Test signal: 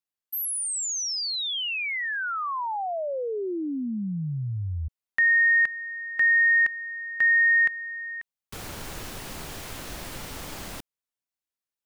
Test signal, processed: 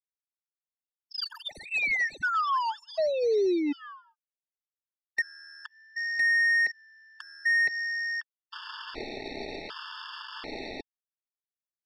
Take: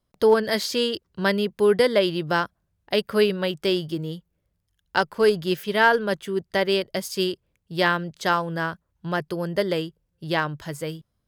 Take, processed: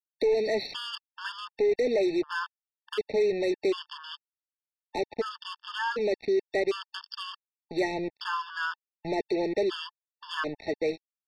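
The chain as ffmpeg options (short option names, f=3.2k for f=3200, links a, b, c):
-filter_complex "[0:a]lowshelf=f=220:t=q:w=3:g=-11.5,aecho=1:1:4.7:0.48,acrossover=split=320|2800[a][b][c];[a]acompressor=threshold=-35dB:ratio=2.5[d];[b]acompressor=threshold=-25dB:ratio=2[e];[c]acompressor=threshold=-37dB:ratio=4[f];[d][e][f]amix=inputs=3:normalize=0,asplit=2[g][h];[h]alimiter=limit=-18.5dB:level=0:latency=1:release=70,volume=-1dB[i];[g][i]amix=inputs=2:normalize=0,acontrast=58,aresample=11025,acrusher=bits=3:mix=0:aa=0.5,aresample=44100,asoftclip=type=tanh:threshold=-11.5dB,afftfilt=real='re*gt(sin(2*PI*0.67*pts/sr)*(1-2*mod(floor(b*sr/1024/900),2)),0)':imag='im*gt(sin(2*PI*0.67*pts/sr)*(1-2*mod(floor(b*sr/1024/900),2)),0)':win_size=1024:overlap=0.75,volume=-8.5dB"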